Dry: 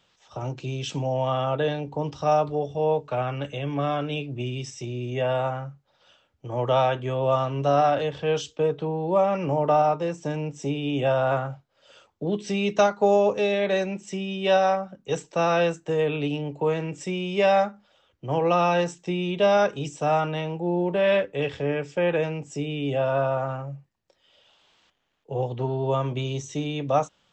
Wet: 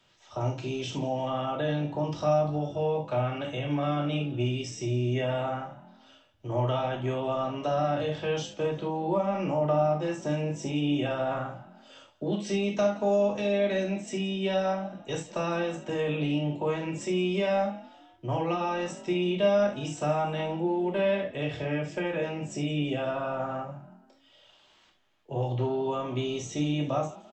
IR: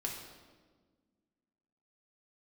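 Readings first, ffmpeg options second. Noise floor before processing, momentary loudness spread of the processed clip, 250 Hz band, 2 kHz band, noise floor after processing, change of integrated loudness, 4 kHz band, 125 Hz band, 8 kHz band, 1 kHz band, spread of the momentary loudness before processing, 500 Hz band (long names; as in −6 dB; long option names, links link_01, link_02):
−67 dBFS, 7 LU, −0.5 dB, −5.0 dB, −61 dBFS, −4.0 dB, −3.0 dB, −2.0 dB, −2.0 dB, −7.0 dB, 11 LU, −5.0 dB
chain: -filter_complex "[0:a]acrossover=split=300|920[link_01][link_02][link_03];[link_01]acompressor=threshold=-32dB:ratio=4[link_04];[link_02]acompressor=threshold=-33dB:ratio=4[link_05];[link_03]acompressor=threshold=-37dB:ratio=4[link_06];[link_04][link_05][link_06]amix=inputs=3:normalize=0,asplit=4[link_07][link_08][link_09][link_10];[link_08]adelay=170,afreqshift=45,volume=-20dB[link_11];[link_09]adelay=340,afreqshift=90,volume=-26.9dB[link_12];[link_10]adelay=510,afreqshift=135,volume=-33.9dB[link_13];[link_07][link_11][link_12][link_13]amix=inputs=4:normalize=0[link_14];[1:a]atrim=start_sample=2205,atrim=end_sample=3087,asetrate=37485,aresample=44100[link_15];[link_14][link_15]afir=irnorm=-1:irlink=0"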